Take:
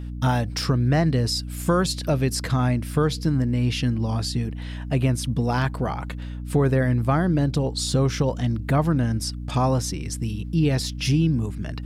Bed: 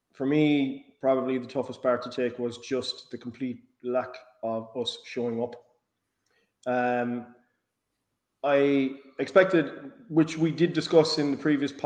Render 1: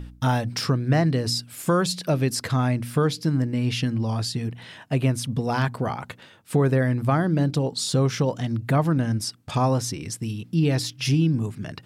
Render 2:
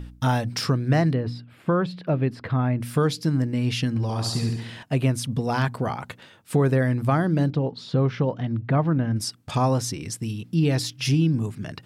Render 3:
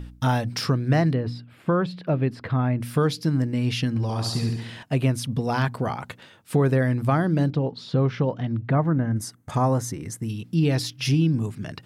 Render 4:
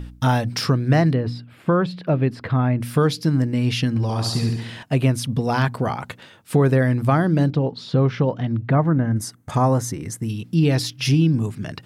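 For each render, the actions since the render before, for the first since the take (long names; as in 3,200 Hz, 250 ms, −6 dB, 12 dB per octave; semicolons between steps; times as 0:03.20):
hum removal 60 Hz, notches 5
0:01.13–0:02.81: high-frequency loss of the air 440 metres; 0:03.89–0:04.83: flutter between parallel walls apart 11.9 metres, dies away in 0.81 s; 0:07.50–0:09.16: high-frequency loss of the air 320 metres
0:08.74–0:10.29: gain on a spectral selection 2,200–5,900 Hz −9 dB; dynamic equaliser 7,700 Hz, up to −4 dB, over −50 dBFS, Q 2.3
level +3.5 dB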